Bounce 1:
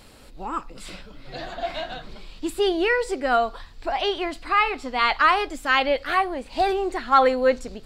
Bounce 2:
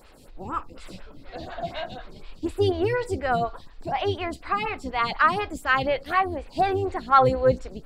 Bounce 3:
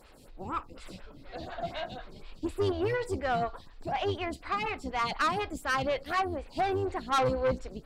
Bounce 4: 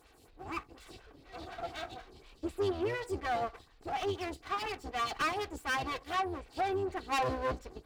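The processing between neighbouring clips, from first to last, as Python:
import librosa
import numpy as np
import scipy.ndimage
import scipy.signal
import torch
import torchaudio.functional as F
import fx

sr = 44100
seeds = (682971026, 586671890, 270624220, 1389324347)

y1 = fx.octave_divider(x, sr, octaves=2, level_db=3.0)
y1 = fx.stagger_phaser(y1, sr, hz=4.1)
y2 = fx.tube_stage(y1, sr, drive_db=20.0, bias=0.35)
y2 = y2 * 10.0 ** (-2.5 / 20.0)
y3 = fx.lower_of_two(y2, sr, delay_ms=2.6)
y3 = scipy.signal.sosfilt(scipy.signal.butter(2, 43.0, 'highpass', fs=sr, output='sos'), y3)
y3 = y3 * 10.0 ** (-3.5 / 20.0)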